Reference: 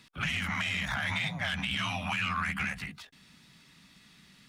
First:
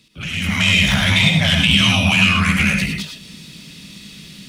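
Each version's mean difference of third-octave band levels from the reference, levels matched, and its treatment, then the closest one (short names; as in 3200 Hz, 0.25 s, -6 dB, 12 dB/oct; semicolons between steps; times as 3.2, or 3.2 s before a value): 5.0 dB: band shelf 1200 Hz -11 dB; AGC gain up to 15 dB; non-linear reverb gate 0.13 s rising, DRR 2.5 dB; gain +4 dB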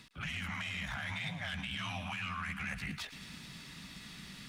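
6.5 dB: low shelf 88 Hz +6 dB; reverse; compressor 5:1, threshold -47 dBFS, peak gain reduction 17.5 dB; reverse; thinning echo 0.108 s, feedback 81%, high-pass 1100 Hz, level -13.5 dB; gain +8 dB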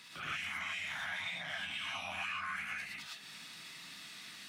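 9.0 dB: HPF 770 Hz 6 dB/oct; compressor 4:1, threshold -51 dBFS, peak gain reduction 18 dB; non-linear reverb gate 0.14 s rising, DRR -5 dB; gain +4 dB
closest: first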